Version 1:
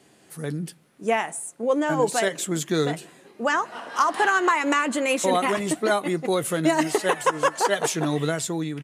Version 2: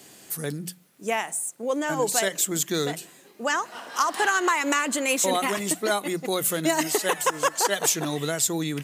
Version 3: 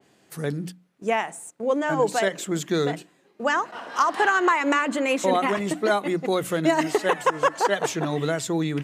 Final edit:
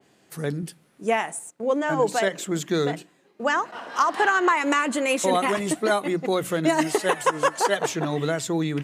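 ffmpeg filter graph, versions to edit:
-filter_complex "[0:a]asplit=3[a][b][c];[2:a]asplit=4[d][e][f][g];[d]atrim=end=0.632[h];[a]atrim=start=0.628:end=1.392[i];[e]atrim=start=1.388:end=4.572[j];[b]atrim=start=4.568:end=6.062[k];[f]atrim=start=6.058:end=6.682[l];[c]atrim=start=6.678:end=7.772[m];[g]atrim=start=7.768[n];[h][i]acrossfade=d=0.004:c1=hsin:c2=hsin[o];[o][j]acrossfade=d=0.004:c1=hsin:c2=hsin[p];[p][k]acrossfade=d=0.004:c1=hsin:c2=hsin[q];[q][l]acrossfade=d=0.004:c1=hsin:c2=hsin[r];[r][m]acrossfade=d=0.004:c1=hsin:c2=hsin[s];[s][n]acrossfade=d=0.004:c1=hsin:c2=hsin"

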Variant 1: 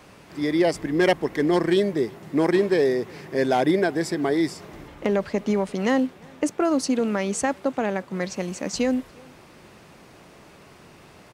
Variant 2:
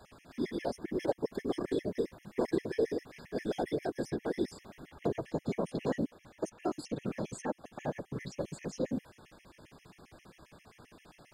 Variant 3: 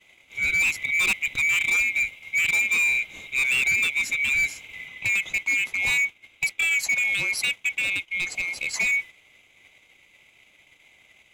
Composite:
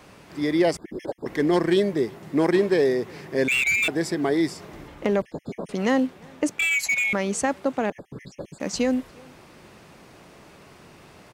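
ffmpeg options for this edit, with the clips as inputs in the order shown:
-filter_complex "[1:a]asplit=3[a][b][c];[2:a]asplit=2[d][e];[0:a]asplit=6[f][g][h][i][j][k];[f]atrim=end=0.772[l];[a]atrim=start=0.768:end=1.262[m];[g]atrim=start=1.258:end=3.482[n];[d]atrim=start=3.478:end=3.882[o];[h]atrim=start=3.878:end=5.222[p];[b]atrim=start=5.218:end=5.692[q];[i]atrim=start=5.688:end=6.592[r];[e]atrim=start=6.588:end=7.132[s];[j]atrim=start=7.128:end=7.902[t];[c]atrim=start=7.898:end=8.602[u];[k]atrim=start=8.598[v];[l][m]acrossfade=d=0.004:c1=hsin:c2=hsin[w];[w][n]acrossfade=d=0.004:c1=hsin:c2=hsin[x];[x][o]acrossfade=d=0.004:c1=hsin:c2=hsin[y];[y][p]acrossfade=d=0.004:c1=hsin:c2=hsin[z];[z][q]acrossfade=d=0.004:c1=hsin:c2=hsin[aa];[aa][r]acrossfade=d=0.004:c1=hsin:c2=hsin[ab];[ab][s]acrossfade=d=0.004:c1=hsin:c2=hsin[ac];[ac][t]acrossfade=d=0.004:c1=hsin:c2=hsin[ad];[ad][u]acrossfade=d=0.004:c1=hsin:c2=hsin[ae];[ae][v]acrossfade=d=0.004:c1=hsin:c2=hsin"

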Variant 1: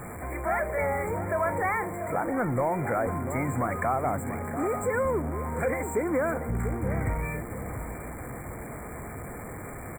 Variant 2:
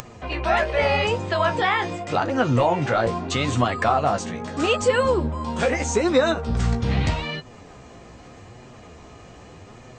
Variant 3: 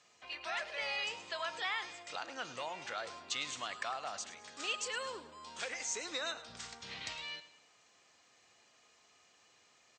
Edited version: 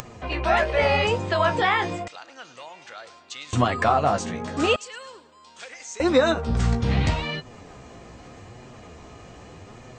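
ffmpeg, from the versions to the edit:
-filter_complex "[2:a]asplit=2[a][b];[1:a]asplit=3[c][d][e];[c]atrim=end=2.082[f];[a]atrim=start=2.078:end=3.532[g];[d]atrim=start=3.528:end=4.762[h];[b]atrim=start=4.758:end=6.002[i];[e]atrim=start=5.998[j];[f][g]acrossfade=d=0.004:c1=hsin:c2=hsin[k];[k][h]acrossfade=d=0.004:c1=hsin:c2=hsin[l];[l][i]acrossfade=d=0.004:c1=hsin:c2=hsin[m];[m][j]acrossfade=d=0.004:c1=hsin:c2=hsin"

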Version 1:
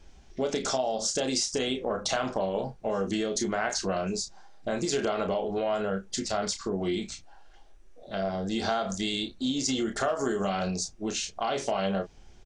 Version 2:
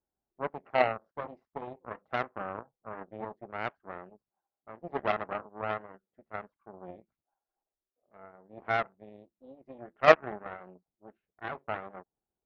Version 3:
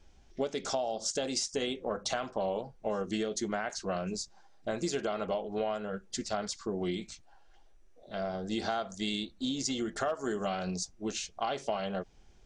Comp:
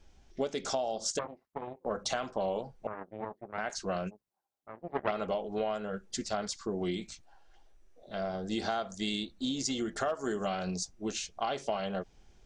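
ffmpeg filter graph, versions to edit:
-filter_complex "[1:a]asplit=3[a][b][c];[2:a]asplit=4[d][e][f][g];[d]atrim=end=1.192[h];[a]atrim=start=1.188:end=1.852[i];[e]atrim=start=1.848:end=2.872[j];[b]atrim=start=2.868:end=3.582[k];[f]atrim=start=3.578:end=4.11[l];[c]atrim=start=4.07:end=5.12[m];[g]atrim=start=5.08[n];[h][i]acrossfade=d=0.004:c1=hsin:c2=hsin[o];[o][j]acrossfade=d=0.004:c1=hsin:c2=hsin[p];[p][k]acrossfade=d=0.004:c1=hsin:c2=hsin[q];[q][l]acrossfade=d=0.004:c1=hsin:c2=hsin[r];[r][m]acrossfade=d=0.04:c1=tri:c2=tri[s];[s][n]acrossfade=d=0.04:c1=tri:c2=tri"

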